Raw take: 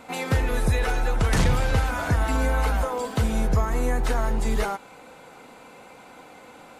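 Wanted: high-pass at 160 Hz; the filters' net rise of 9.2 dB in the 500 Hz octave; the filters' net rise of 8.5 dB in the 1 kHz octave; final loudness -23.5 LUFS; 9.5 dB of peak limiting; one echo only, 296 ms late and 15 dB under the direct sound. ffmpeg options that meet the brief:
-af "highpass=160,equalizer=f=500:t=o:g=8.5,equalizer=f=1000:t=o:g=8,alimiter=limit=0.15:level=0:latency=1,aecho=1:1:296:0.178,volume=1.19"

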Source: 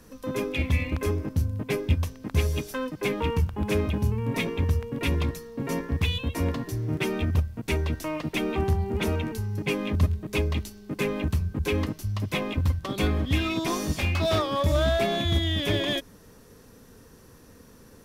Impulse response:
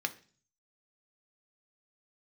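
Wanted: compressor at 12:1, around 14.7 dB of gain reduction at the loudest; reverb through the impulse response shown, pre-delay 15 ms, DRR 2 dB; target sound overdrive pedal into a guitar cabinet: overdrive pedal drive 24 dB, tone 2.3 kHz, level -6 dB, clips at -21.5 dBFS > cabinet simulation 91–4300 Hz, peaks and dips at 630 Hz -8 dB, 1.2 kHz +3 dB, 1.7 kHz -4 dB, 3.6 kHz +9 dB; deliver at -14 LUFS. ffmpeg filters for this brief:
-filter_complex "[0:a]acompressor=threshold=0.0224:ratio=12,asplit=2[s0][s1];[1:a]atrim=start_sample=2205,adelay=15[s2];[s1][s2]afir=irnorm=-1:irlink=0,volume=0.501[s3];[s0][s3]amix=inputs=2:normalize=0,asplit=2[s4][s5];[s5]highpass=f=720:p=1,volume=15.8,asoftclip=type=tanh:threshold=0.0841[s6];[s4][s6]amix=inputs=2:normalize=0,lowpass=f=2300:p=1,volume=0.501,highpass=91,equalizer=f=630:t=q:w=4:g=-8,equalizer=f=1200:t=q:w=4:g=3,equalizer=f=1700:t=q:w=4:g=-4,equalizer=f=3600:t=q:w=4:g=9,lowpass=f=4300:w=0.5412,lowpass=f=4300:w=1.3066,volume=7.08"

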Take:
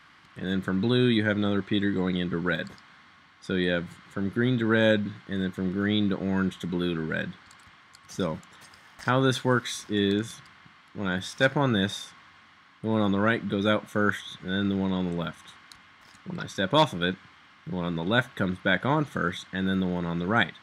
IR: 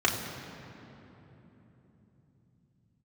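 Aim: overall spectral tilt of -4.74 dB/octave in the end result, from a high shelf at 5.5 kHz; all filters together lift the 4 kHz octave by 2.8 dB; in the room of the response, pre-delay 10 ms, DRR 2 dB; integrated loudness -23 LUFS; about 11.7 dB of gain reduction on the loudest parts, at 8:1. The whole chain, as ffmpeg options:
-filter_complex "[0:a]equalizer=f=4000:t=o:g=6,highshelf=f=5500:g=-8.5,acompressor=threshold=0.0398:ratio=8,asplit=2[s0][s1];[1:a]atrim=start_sample=2205,adelay=10[s2];[s1][s2]afir=irnorm=-1:irlink=0,volume=0.168[s3];[s0][s3]amix=inputs=2:normalize=0,volume=2.82"

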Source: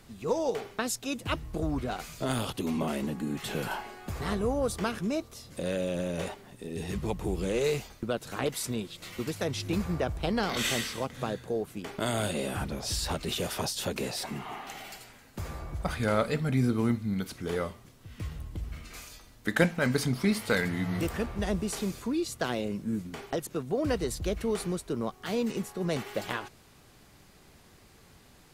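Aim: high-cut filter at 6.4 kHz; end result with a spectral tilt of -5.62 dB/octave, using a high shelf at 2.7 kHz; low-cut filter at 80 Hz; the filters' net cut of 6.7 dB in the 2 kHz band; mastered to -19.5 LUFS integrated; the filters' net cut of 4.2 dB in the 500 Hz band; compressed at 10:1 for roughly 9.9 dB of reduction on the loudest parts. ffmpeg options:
-af "highpass=80,lowpass=6400,equalizer=f=500:t=o:g=-4.5,equalizer=f=2000:t=o:g=-6,highshelf=f=2700:g=-6.5,acompressor=threshold=0.0251:ratio=10,volume=8.91"

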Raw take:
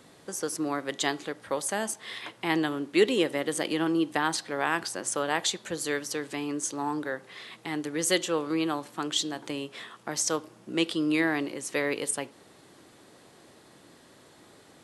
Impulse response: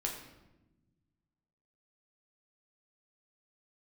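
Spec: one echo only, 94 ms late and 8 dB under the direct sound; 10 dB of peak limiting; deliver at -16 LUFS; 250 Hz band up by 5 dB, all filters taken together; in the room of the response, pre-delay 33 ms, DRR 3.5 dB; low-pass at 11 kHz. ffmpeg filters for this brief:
-filter_complex "[0:a]lowpass=11000,equalizer=f=250:t=o:g=7,alimiter=limit=0.112:level=0:latency=1,aecho=1:1:94:0.398,asplit=2[s0][s1];[1:a]atrim=start_sample=2205,adelay=33[s2];[s1][s2]afir=irnorm=-1:irlink=0,volume=0.531[s3];[s0][s3]amix=inputs=2:normalize=0,volume=3.76"

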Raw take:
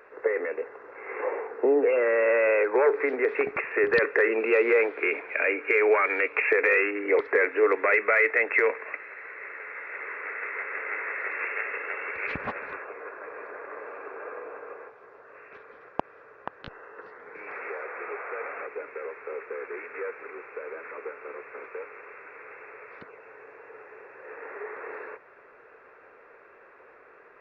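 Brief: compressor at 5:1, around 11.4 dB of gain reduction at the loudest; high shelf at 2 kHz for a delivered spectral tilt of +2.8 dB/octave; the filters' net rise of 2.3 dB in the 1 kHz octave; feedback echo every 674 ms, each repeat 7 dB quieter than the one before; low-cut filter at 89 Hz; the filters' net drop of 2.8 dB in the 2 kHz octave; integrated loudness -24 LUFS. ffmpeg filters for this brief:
-af "highpass=89,equalizer=f=1000:t=o:g=4,highshelf=f=2000:g=4,equalizer=f=2000:t=o:g=-6.5,acompressor=threshold=0.0316:ratio=5,aecho=1:1:674|1348|2022|2696|3370:0.447|0.201|0.0905|0.0407|0.0183,volume=3.35"

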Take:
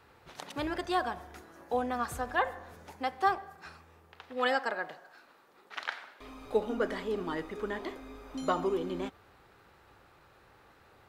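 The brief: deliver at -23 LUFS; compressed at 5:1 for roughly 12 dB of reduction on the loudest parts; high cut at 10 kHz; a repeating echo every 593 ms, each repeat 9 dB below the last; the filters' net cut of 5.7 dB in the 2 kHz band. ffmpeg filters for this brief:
-af "lowpass=10000,equalizer=f=2000:t=o:g=-7.5,acompressor=threshold=0.0158:ratio=5,aecho=1:1:593|1186|1779|2372:0.355|0.124|0.0435|0.0152,volume=9.44"

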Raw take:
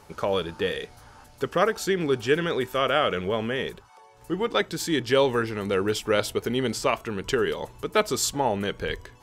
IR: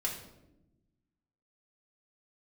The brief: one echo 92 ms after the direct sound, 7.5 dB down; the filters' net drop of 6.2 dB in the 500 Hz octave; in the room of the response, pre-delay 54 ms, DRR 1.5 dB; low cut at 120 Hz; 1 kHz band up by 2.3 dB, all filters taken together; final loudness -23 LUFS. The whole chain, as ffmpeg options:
-filter_complex "[0:a]highpass=120,equalizer=f=500:t=o:g=-9,equalizer=f=1000:t=o:g=5.5,aecho=1:1:92:0.422,asplit=2[s0][s1];[1:a]atrim=start_sample=2205,adelay=54[s2];[s1][s2]afir=irnorm=-1:irlink=0,volume=0.596[s3];[s0][s3]amix=inputs=2:normalize=0,volume=1.12"

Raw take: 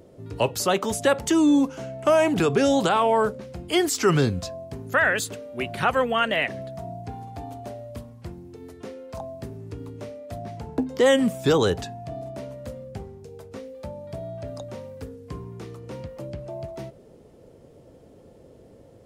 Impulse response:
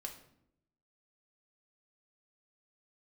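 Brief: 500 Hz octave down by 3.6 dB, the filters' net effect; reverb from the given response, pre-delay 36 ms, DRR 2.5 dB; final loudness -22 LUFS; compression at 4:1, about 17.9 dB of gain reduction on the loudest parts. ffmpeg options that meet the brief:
-filter_complex "[0:a]equalizer=f=500:t=o:g=-4.5,acompressor=threshold=0.01:ratio=4,asplit=2[s0][s1];[1:a]atrim=start_sample=2205,adelay=36[s2];[s1][s2]afir=irnorm=-1:irlink=0,volume=1[s3];[s0][s3]amix=inputs=2:normalize=0,volume=7.94"

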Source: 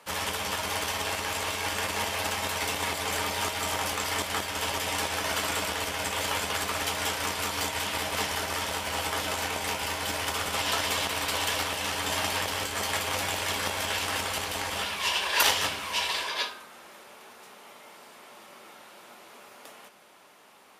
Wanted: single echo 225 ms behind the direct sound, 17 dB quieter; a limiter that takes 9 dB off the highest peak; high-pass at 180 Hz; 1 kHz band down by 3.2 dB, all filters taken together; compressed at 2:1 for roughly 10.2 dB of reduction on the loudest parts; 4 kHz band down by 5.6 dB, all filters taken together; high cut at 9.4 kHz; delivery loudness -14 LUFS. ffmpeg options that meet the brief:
-af "highpass=180,lowpass=9400,equalizer=f=1000:t=o:g=-3.5,equalizer=f=4000:t=o:g=-7.5,acompressor=threshold=0.00891:ratio=2,alimiter=level_in=2.11:limit=0.0631:level=0:latency=1,volume=0.473,aecho=1:1:225:0.141,volume=18.8"

